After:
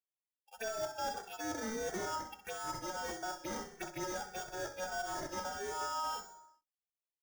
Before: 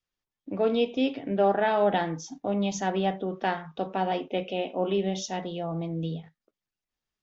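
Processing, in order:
hearing-aid frequency compression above 3,300 Hz 1.5 to 1
reversed playback
downward compressor 16 to 1, threshold −32 dBFS, peak gain reduction 15 dB
reversed playback
ring modulation 1,100 Hz
sample-rate reduction 4,100 Hz, jitter 0%
noise gate −42 dBFS, range −20 dB
phaser swept by the level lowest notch 220 Hz, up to 2,600 Hz, full sweep at −38 dBFS
on a send: repeating echo 64 ms, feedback 56%, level −12 dB
on the sum: soft clipping −33.5 dBFS, distortion −16 dB
barber-pole flanger 2.2 ms −1.6 Hz
level +6.5 dB

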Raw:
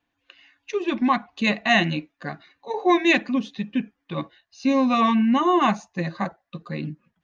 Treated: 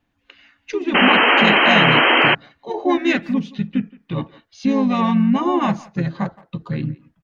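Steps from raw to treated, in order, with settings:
low-shelf EQ 230 Hz +11.5 dB
in parallel at +2 dB: downward compressor 10 to 1, threshold −27 dBFS, peak gain reduction 16.5 dB
on the sum: far-end echo of a speakerphone 170 ms, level −20 dB
pitch-shifted copies added −4 semitones −6 dB
sound drawn into the spectrogram noise, 0:00.94–0:02.35, 230–3,200 Hz −9 dBFS
level −5 dB

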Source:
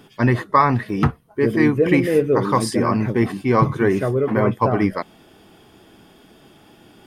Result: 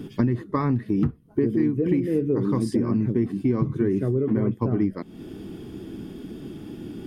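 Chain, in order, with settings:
low shelf with overshoot 470 Hz +12.5 dB, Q 1.5
downward compressor 6 to 1, threshold −21 dBFS, peak gain reduction 21.5 dB

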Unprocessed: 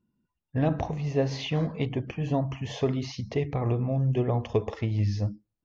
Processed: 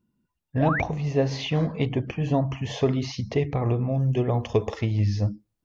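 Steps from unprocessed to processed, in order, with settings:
0:03.94–0:04.92: high-shelf EQ 5,500 Hz +10 dB
in parallel at 0 dB: speech leveller 0.5 s
0:00.60–0:00.82: on the sum: sound drawn into the spectrogram rise 550–2,500 Hz −24 dBFS
level −3 dB

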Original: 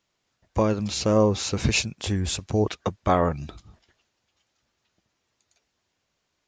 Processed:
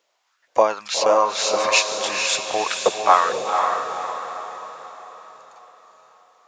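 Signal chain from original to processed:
auto-filter high-pass saw up 2.1 Hz 470–1,700 Hz
feedback delay with all-pass diffusion 488 ms, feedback 46%, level −4 dB
level +5 dB

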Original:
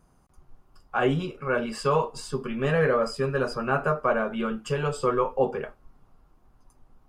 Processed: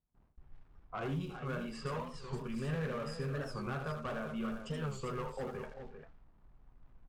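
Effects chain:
gain into a clipping stage and back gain 20 dB
downward compressor 2 to 1, threshold −29 dBFS, peak gain reduction 4.5 dB
surface crackle 500 per second −43 dBFS
tilt shelving filter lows +8 dB, about 1,100 Hz
multi-tap delay 80/358/397 ms −8/−17/−9 dB
low-pass that shuts in the quiet parts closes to 860 Hz, open at −21 dBFS
noise gate with hold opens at −43 dBFS
guitar amp tone stack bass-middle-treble 5-5-5
wow of a warped record 45 rpm, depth 160 cents
level +3 dB

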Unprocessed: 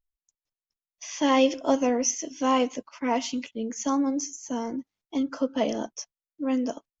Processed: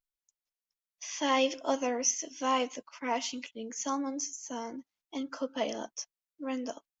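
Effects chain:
low-shelf EQ 450 Hz −11 dB
level −2 dB

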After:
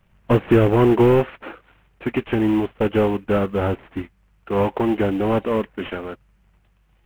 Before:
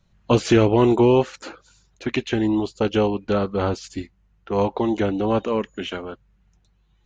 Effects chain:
variable-slope delta modulation 16 kbit/s
log-companded quantiser 8 bits
level +2.5 dB

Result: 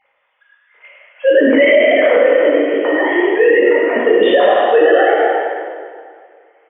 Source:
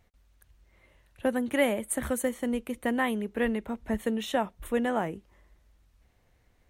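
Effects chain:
three sine waves on the formant tracks
0:02.29–0:03.12: downward compressor, threshold −33 dBFS, peak gain reduction 9.5 dB
on a send: echo with shifted repeats 101 ms, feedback 43%, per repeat +46 Hz, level −6.5 dB
on the sum: dense smooth reverb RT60 2 s, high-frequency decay 0.8×, DRR −7 dB
boost into a limiter +14 dB
level −1.5 dB

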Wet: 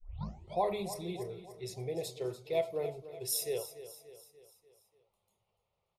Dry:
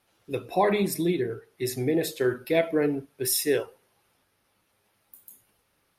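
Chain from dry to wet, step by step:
turntable start at the beginning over 0.60 s
phaser with its sweep stopped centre 670 Hz, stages 4
low-pass that shuts in the quiet parts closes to 2,700 Hz, open at −23.5 dBFS
on a send: repeating echo 291 ms, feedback 51%, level −13.5 dB
on the sum: level −7 dB

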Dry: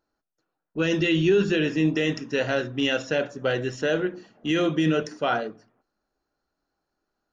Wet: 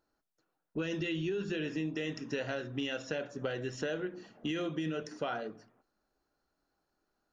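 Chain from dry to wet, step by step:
downward compressor 6 to 1, threshold −32 dBFS, peak gain reduction 15 dB
level −1 dB

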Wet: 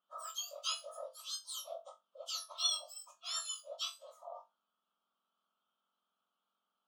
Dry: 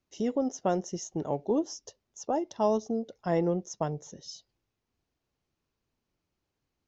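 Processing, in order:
frequency axis turned over on the octave scale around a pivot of 1,900 Hz
pair of resonant band-passes 2,000 Hz, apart 1.3 octaves
flutter between parallel walls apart 3.6 metres, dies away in 0.21 s
level +11 dB

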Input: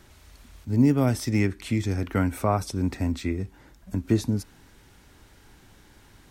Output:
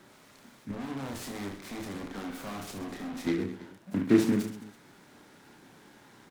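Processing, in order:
high-pass filter 150 Hz 24 dB per octave
high-shelf EQ 7,900 Hz −8 dB
0:00.71–0:03.27: tube saturation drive 38 dB, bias 0.6
Butterworth band-reject 3,000 Hz, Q 2.6
reverse bouncing-ball delay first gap 30 ms, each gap 1.4×, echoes 5
short delay modulated by noise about 1,500 Hz, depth 0.055 ms

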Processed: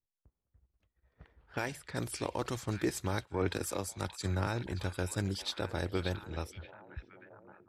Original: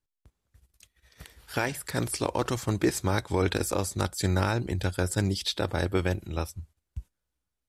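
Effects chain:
echo through a band-pass that steps 579 ms, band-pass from 3,100 Hz, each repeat −0.7 octaves, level −7 dB
low-pass that shuts in the quiet parts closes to 970 Hz, open at −25.5 dBFS
0:03.25–0:04.47: multiband upward and downward expander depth 100%
level −7.5 dB

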